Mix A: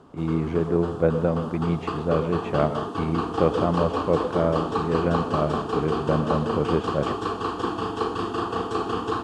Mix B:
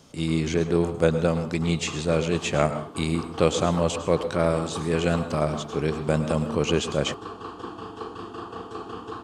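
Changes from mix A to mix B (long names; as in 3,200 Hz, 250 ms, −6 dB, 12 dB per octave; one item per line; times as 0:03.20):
speech: remove low-pass filter 1,300 Hz 12 dB per octave
background −9.5 dB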